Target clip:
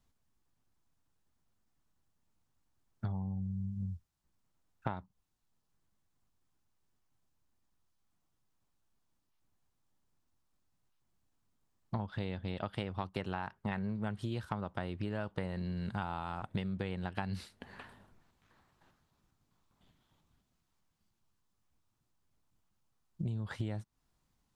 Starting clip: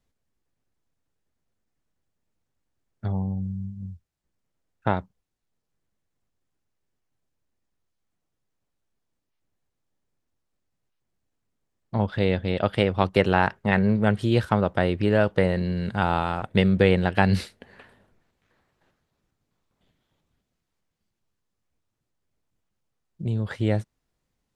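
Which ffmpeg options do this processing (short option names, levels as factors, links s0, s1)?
-af "equalizer=f=500:t=o:w=1:g=-7,equalizer=f=1000:t=o:w=1:g=4,equalizer=f=2000:t=o:w=1:g=-4,acompressor=threshold=0.02:ratio=16,volume=1.12"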